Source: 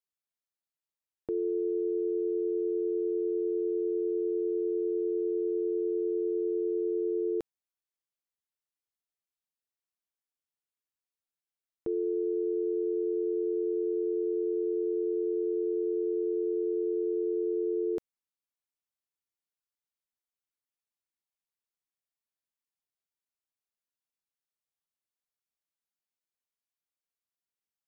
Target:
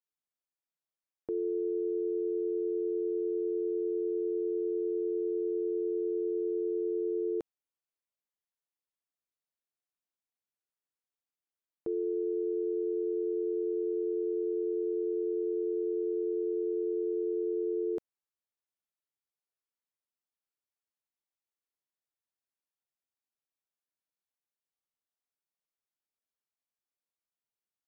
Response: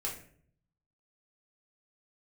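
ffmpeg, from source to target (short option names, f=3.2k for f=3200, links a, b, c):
-af "equalizer=f=560:w=0.32:g=6,volume=-7.5dB"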